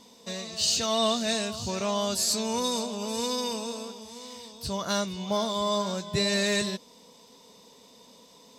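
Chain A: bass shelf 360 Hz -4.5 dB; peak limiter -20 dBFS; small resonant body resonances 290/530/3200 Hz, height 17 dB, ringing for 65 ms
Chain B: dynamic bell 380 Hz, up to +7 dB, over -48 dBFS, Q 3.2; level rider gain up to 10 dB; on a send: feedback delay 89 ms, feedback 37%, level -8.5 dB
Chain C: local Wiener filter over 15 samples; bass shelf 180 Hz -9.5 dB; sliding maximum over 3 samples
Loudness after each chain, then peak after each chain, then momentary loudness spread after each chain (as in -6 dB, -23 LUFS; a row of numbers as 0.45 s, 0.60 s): -27.5 LUFS, -17.0 LUFS, -30.5 LUFS; -14.0 dBFS, -2.5 dBFS, -14.0 dBFS; 11 LU, 15 LU, 17 LU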